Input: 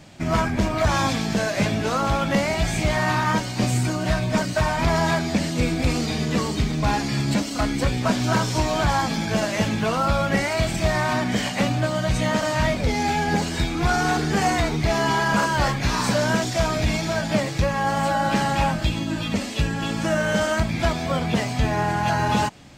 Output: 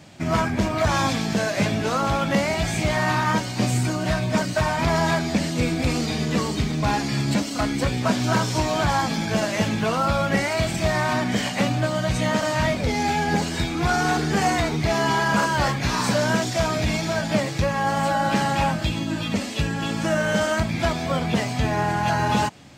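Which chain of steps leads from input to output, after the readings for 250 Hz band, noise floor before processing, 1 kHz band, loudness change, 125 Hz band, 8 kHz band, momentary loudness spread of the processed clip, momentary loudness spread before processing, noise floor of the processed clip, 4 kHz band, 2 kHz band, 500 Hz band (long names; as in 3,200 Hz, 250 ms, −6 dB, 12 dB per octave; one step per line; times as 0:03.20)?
0.0 dB, −29 dBFS, 0.0 dB, 0.0 dB, −0.5 dB, 0.0 dB, 3 LU, 3 LU, −29 dBFS, 0.0 dB, 0.0 dB, 0.0 dB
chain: high-pass filter 67 Hz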